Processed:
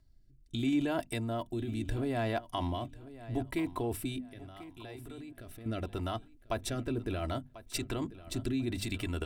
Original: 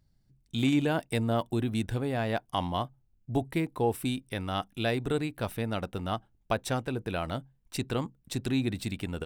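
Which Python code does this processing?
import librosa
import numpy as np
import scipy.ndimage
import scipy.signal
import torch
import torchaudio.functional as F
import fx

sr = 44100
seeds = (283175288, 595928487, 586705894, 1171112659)

p1 = fx.over_compress(x, sr, threshold_db=-33.0, ratio=-0.5)
p2 = x + (p1 * librosa.db_to_amplitude(1.0))
p3 = fx.low_shelf(p2, sr, hz=95.0, db=6.5)
p4 = p3 + 0.57 * np.pad(p3, (int(3.0 * sr / 1000.0), 0))[:len(p3)]
p5 = fx.level_steps(p4, sr, step_db=19, at=(4.18, 5.66))
p6 = fx.rotary(p5, sr, hz=0.75)
p7 = fx.hum_notches(p6, sr, base_hz=50, count=5)
p8 = p7 + fx.echo_feedback(p7, sr, ms=1042, feedback_pct=27, wet_db=-16.5, dry=0)
y = p8 * librosa.db_to_amplitude(-7.5)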